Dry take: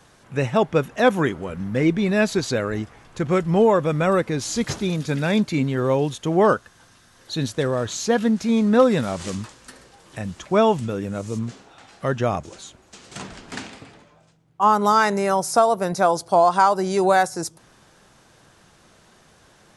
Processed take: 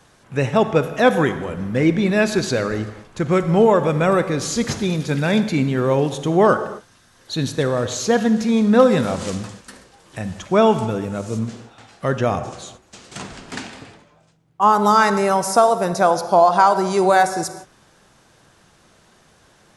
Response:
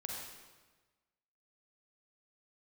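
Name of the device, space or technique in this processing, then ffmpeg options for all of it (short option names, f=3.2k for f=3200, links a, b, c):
keyed gated reverb: -filter_complex "[0:a]asettb=1/sr,asplit=3[a][b][c];[a]atrim=end=16.104[d];[b]atrim=start=16.1:end=16.67,asetpts=PTS-STARTPTS,afade=t=in:d=0.004:c=qsin,afade=t=out:st=0.566:d=0.004:c=qsin,equalizer=f=8.2k:t=o:w=0.25:g=-10[e];[c]atrim=start=16.666[f];[d][e]acrossfade=d=0.004:c1=hsin:c2=qsin[g];[g][f]acrossfade=d=0.004:c1=qsin:c2=hsin,asplit=3[h][i][j];[1:a]atrim=start_sample=2205[k];[i][k]afir=irnorm=-1:irlink=0[l];[j]apad=whole_len=871441[m];[l][m]sidechaingate=range=-33dB:threshold=-46dB:ratio=16:detection=peak,volume=-6dB[n];[h][n]amix=inputs=2:normalize=0"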